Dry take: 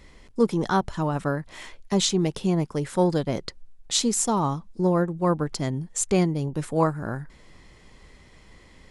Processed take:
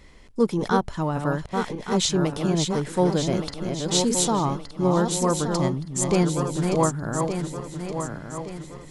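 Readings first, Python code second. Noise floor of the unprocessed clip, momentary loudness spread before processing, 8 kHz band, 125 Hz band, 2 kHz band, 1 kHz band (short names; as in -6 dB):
-52 dBFS, 10 LU, +2.0 dB, +1.5 dB, +2.0 dB, +2.0 dB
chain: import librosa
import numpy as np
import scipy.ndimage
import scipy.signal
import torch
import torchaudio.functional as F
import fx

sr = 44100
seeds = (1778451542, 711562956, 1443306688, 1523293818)

y = fx.reverse_delay_fb(x, sr, ms=585, feedback_pct=63, wet_db=-5.0)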